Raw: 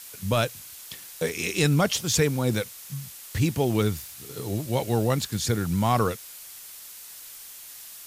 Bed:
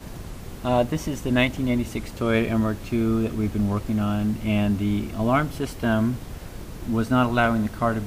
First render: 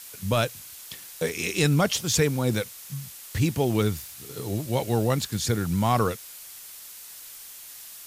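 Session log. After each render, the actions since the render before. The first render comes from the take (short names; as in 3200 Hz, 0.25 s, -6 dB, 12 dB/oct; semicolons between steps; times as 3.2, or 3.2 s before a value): nothing audible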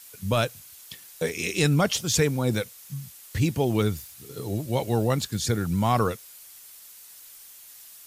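denoiser 6 dB, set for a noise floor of -44 dBFS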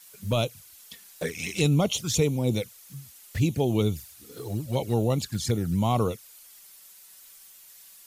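envelope flanger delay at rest 6.5 ms, full sweep at -20.5 dBFS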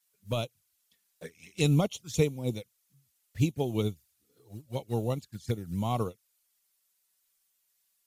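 upward expander 2.5:1, over -35 dBFS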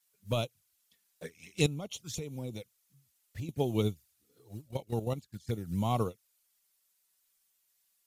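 1.66–3.49 compressor 20:1, threshold -34 dBFS; 4.68–5.54 level quantiser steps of 10 dB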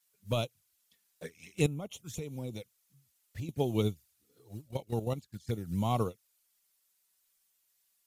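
1.55–2.19 bell 4600 Hz -10.5 dB 0.92 oct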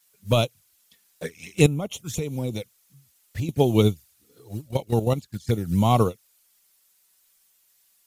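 gain +11 dB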